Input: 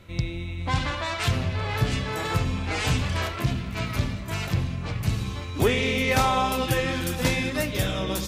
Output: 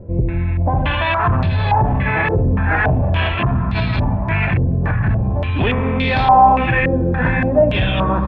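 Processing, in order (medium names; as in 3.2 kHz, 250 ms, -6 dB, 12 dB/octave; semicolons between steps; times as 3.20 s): comb 1.2 ms, depth 44%; saturation -18 dBFS, distortion -14 dB; distance through air 470 m; loudness maximiser +22.5 dB; step-sequenced low-pass 3.5 Hz 470–4100 Hz; trim -10 dB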